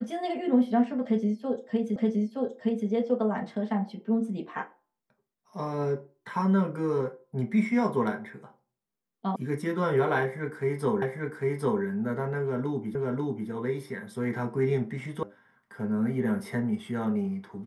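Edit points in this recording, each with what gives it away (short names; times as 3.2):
1.96 repeat of the last 0.92 s
9.36 sound cut off
11.02 repeat of the last 0.8 s
12.95 repeat of the last 0.54 s
15.23 sound cut off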